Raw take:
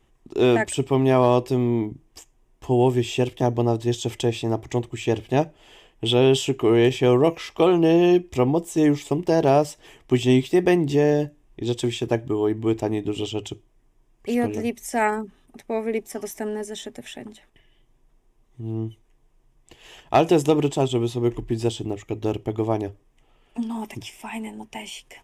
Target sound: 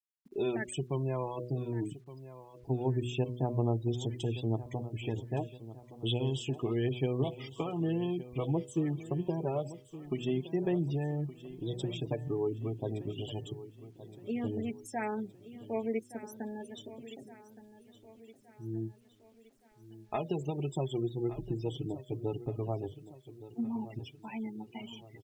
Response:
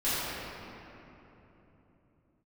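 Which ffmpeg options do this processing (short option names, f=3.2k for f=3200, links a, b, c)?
-af "acompressor=threshold=-19dB:ratio=6,flanger=delay=4.6:depth=5.2:regen=22:speed=0.1:shape=triangular,afftfilt=real='re*gte(hypot(re,im),0.0224)':imag='im*gte(hypot(re,im),0.0224)':win_size=1024:overlap=0.75,adynamicequalizer=threshold=0.00631:dfrequency=140:dqfactor=1.3:tfrequency=140:tqfactor=1.3:attack=5:release=100:ratio=0.375:range=3.5:mode=boostabove:tftype=bell,aecho=1:1:1168|2336|3504|4672|5840:0.168|0.0839|0.042|0.021|0.0105,acrusher=bits=10:mix=0:aa=0.000001,bandreject=f=122.6:t=h:w=4,bandreject=f=245.2:t=h:w=4,bandreject=f=367.8:t=h:w=4,bandreject=f=490.4:t=h:w=4,bandreject=f=613:t=h:w=4,volume=-7.5dB"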